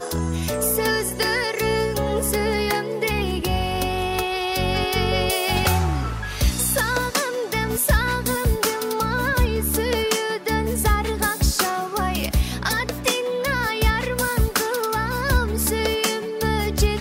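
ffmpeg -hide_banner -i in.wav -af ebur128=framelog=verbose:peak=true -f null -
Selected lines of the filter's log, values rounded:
Integrated loudness:
  I:         -21.9 LUFS
  Threshold: -31.9 LUFS
Loudness range:
  LRA:         0.9 LU
  Threshold: -41.9 LUFS
  LRA low:   -22.4 LUFS
  LRA high:  -21.5 LUFS
True peak:
  Peak:       -7.4 dBFS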